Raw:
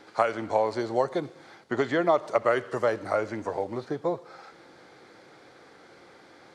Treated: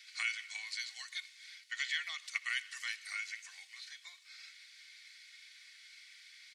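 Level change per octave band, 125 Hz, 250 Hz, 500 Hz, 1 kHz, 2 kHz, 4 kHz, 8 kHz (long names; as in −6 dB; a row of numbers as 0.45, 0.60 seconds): below −40 dB, below −40 dB, below −40 dB, −26.0 dB, −2.0 dB, +4.5 dB, can't be measured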